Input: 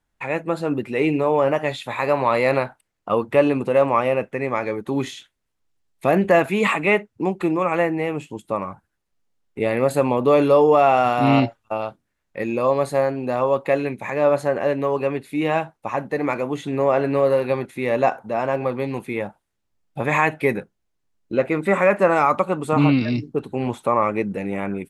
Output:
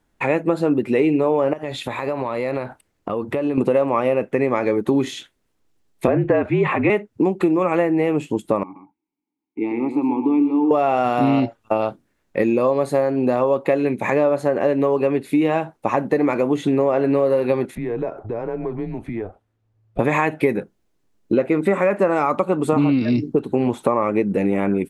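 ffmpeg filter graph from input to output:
ffmpeg -i in.wav -filter_complex "[0:a]asettb=1/sr,asplit=3[link_01][link_02][link_03];[link_01]atrim=end=1.534[link_04];[link_02]atrim=start=1.53:end=3.58,asetpts=PTS-STARTPTS,afade=type=in:duration=0.004:curve=qsin,afade=type=out:start_time=2.046:duration=0.004:curve=qsin,acompressor=threshold=-32dB:ratio=5:attack=3.2:release=140:knee=1:detection=peak,equalizer=frequency=71:width_type=o:width=1.2:gain=7[link_05];[link_03]atrim=start=3.576[link_06];[link_04][link_05]acrossfade=duration=0.004:curve1=hsin:curve2=qsin[link_07];[link_07][link_06]acrossfade=duration=0.004:curve1=qsin:curve2=hsin,asettb=1/sr,asplit=3[link_08][link_09][link_10];[link_08]atrim=end=6.074[link_11];[link_09]atrim=start=6.07:end=6.9,asetpts=PTS-STARTPTS,afade=type=in:duration=0.004:curve=qsin,afade=type=out:start_time=0.826:duration=0.004:curve=qsin,lowpass=2500,afreqshift=-47[link_12];[link_10]atrim=start=6.896[link_13];[link_11][link_12]acrossfade=duration=0.004:curve1=hsin:curve2=qsin[link_14];[link_14][link_13]acrossfade=duration=0.004:curve1=qsin:curve2=hsin,asettb=1/sr,asplit=3[link_15][link_16][link_17];[link_15]atrim=end=8.634[link_18];[link_16]atrim=start=8.63:end=10.71,asetpts=PTS-STARTPTS,afade=type=in:duration=0.004:curve=qsin,afade=type=out:start_time=2.076:duration=0.004:curve=qsin,asplit=3[link_19][link_20][link_21];[link_19]bandpass=frequency=300:width_type=q:width=8,volume=0dB[link_22];[link_20]bandpass=frequency=870:width_type=q:width=8,volume=-6dB[link_23];[link_21]bandpass=frequency=2240:width_type=q:width=8,volume=-9dB[link_24];[link_22][link_23][link_24]amix=inputs=3:normalize=0,aecho=1:1:124:0.376,atrim=end_sample=91728[link_25];[link_17]atrim=start=10.706[link_26];[link_18][link_25]acrossfade=duration=0.004:curve1=hsin:curve2=qsin[link_27];[link_27][link_26]acrossfade=duration=0.004:curve1=qsin:curve2=hsin,asettb=1/sr,asplit=3[link_28][link_29][link_30];[link_28]atrim=end=17.754[link_31];[link_29]atrim=start=17.75:end=19.99,asetpts=PTS-STARTPTS,afade=type=in:duration=0.004:curve=qsin,afade=type=out:start_time=2.236:duration=0.004:curve=qsin,lowpass=frequency=1500:poles=1,acompressor=threshold=-38dB:ratio=3:attack=3.2:release=140:knee=1:detection=peak,afreqshift=-110[link_32];[link_30]atrim=start=19.986[link_33];[link_31][link_32]acrossfade=duration=0.004:curve1=hsin:curve2=qsin[link_34];[link_34][link_33]acrossfade=duration=0.004:curve1=qsin:curve2=hsin,equalizer=frequency=320:width=0.74:gain=7.5,acompressor=threshold=-21dB:ratio=6,volume=6dB" out.wav

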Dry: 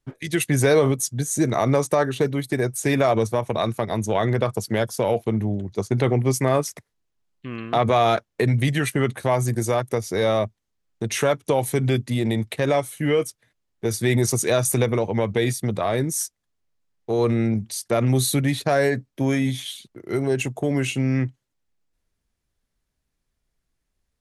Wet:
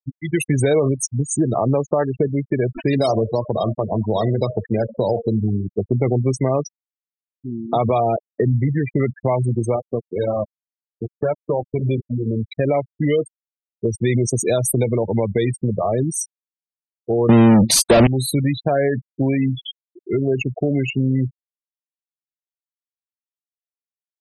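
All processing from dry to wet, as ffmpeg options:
ffmpeg -i in.wav -filter_complex "[0:a]asettb=1/sr,asplit=3[link_01][link_02][link_03];[link_01]atrim=end=2.674[link_04];[link_02]atrim=start=2.67:end=5.8,asetpts=PTS-STARTPTS,afade=type=in:duration=0.004:curve=qsin,afade=type=out:start_time=3.126:duration=0.004:curve=qsin,acrusher=samples=8:mix=1:aa=0.000001:lfo=1:lforange=4.8:lforate=3.5,bandreject=frequency=77.28:width_type=h:width=4,bandreject=frequency=154.56:width_type=h:width=4,bandreject=frequency=231.84:width_type=h:width=4,bandreject=frequency=309.12:width_type=h:width=4,bandreject=frequency=386.4:width_type=h:width=4,bandreject=frequency=463.68:width_type=h:width=4,bandreject=frequency=540.96:width_type=h:width=4,bandreject=frequency=618.24:width_type=h:width=4,bandreject=frequency=695.52:width_type=h:width=4,bandreject=frequency=772.8:width_type=h:width=4,bandreject=frequency=850.08:width_type=h:width=4,bandreject=frequency=927.36:width_type=h:width=4,bandreject=frequency=1004.64:width_type=h:width=4,bandreject=frequency=1081.92:width_type=h:width=4,bandreject=frequency=1159.2:width_type=h:width=4,bandreject=frequency=1236.48:width_type=h:width=4,bandreject=frequency=1313.76:width_type=h:width=4,bandreject=frequency=1391.04:width_type=h:width=4,bandreject=frequency=1468.32:width_type=h:width=4,bandreject=frequency=1545.6:width_type=h:width=4,bandreject=frequency=1622.88:width_type=h:width=4,bandreject=frequency=1700.16:width_type=h:width=4,bandreject=frequency=1777.44:width_type=h:width=4,bandreject=frequency=1854.72:width_type=h:width=4,bandreject=frequency=1932:width_type=h:width=4,bandreject=frequency=2009.28:width_type=h:width=4,bandreject=frequency=2086.56:width_type=h:width=4,bandreject=frequency=2163.84:width_type=h:width=4,bandreject=frequency=2241.12:width_type=h:width=4,bandreject=frequency=2318.4:width_type=h:width=4,aecho=1:1:78|156|234:0.141|0.0509|0.0183,atrim=end_sample=138033[link_05];[link_03]atrim=start=5.796[link_06];[link_04][link_05]acrossfade=duration=0.004:curve1=hsin:curve2=qsin[link_07];[link_07][link_06]acrossfade=duration=0.004:curve1=qsin:curve2=hsin,asettb=1/sr,asplit=3[link_08][link_09][link_10];[link_08]atrim=end=8.004[link_11];[link_09]atrim=start=8:end=8.99,asetpts=PTS-STARTPTS,afade=type=in:duration=0.004:curve=qsin,afade=type=out:start_time=0.986:duration=0.004:curve=qsin,lowpass=1900,equalizer=frequency=1200:width=3.2:gain=-10[link_12];[link_10]atrim=start=8.986[link_13];[link_11][link_12]acrossfade=duration=0.004:curve1=hsin:curve2=qsin[link_14];[link_14][link_13]acrossfade=duration=0.004:curve1=qsin:curve2=hsin,asettb=1/sr,asplit=3[link_15][link_16][link_17];[link_15]atrim=end=9.764[link_18];[link_16]atrim=start=9.76:end=12.43,asetpts=PTS-STARTPTS,afade=type=in:duration=0.004:curve=qsin,afade=type=out:start_time=2.666:duration=0.004:curve=qsin,flanger=delay=4.8:depth=4.8:regen=-50:speed=1.7:shape=triangular,aeval=exprs='val(0)*gte(abs(val(0)),0.0473)':channel_layout=same[link_19];[link_17]atrim=start=12.426[link_20];[link_18][link_19]acrossfade=duration=0.004:curve1=hsin:curve2=qsin[link_21];[link_21][link_20]acrossfade=duration=0.004:curve1=qsin:curve2=hsin,asettb=1/sr,asplit=3[link_22][link_23][link_24];[link_22]atrim=end=17.294[link_25];[link_23]atrim=start=17.29:end=18.07,asetpts=PTS-STARTPTS,afade=type=in:duration=0.004:curve=qsin,afade=type=out:start_time=0.776:duration=0.004:curve=qsin,equalizer=frequency=150:width=0.32:gain=11.5,asplit=2[link_26][link_27];[link_27]highpass=frequency=720:poles=1,volume=36dB,asoftclip=type=tanh:threshold=-1.5dB[link_28];[link_26][link_28]amix=inputs=2:normalize=0,lowpass=frequency=4800:poles=1,volume=-6dB,aeval=exprs='sgn(val(0))*max(abs(val(0))-0.00944,0)':channel_layout=same[link_29];[link_24]atrim=start=18.066[link_30];[link_25][link_29]acrossfade=duration=0.004:curve1=hsin:curve2=qsin[link_31];[link_31][link_30]acrossfade=duration=0.004:curve1=qsin:curve2=hsin,afftfilt=real='re*gte(hypot(re,im),0.112)':imag='im*gte(hypot(re,im),0.112)':win_size=1024:overlap=0.75,equalizer=frequency=1400:width=1.4:gain=-6,acompressor=threshold=-24dB:ratio=2,volume=6.5dB" out.wav

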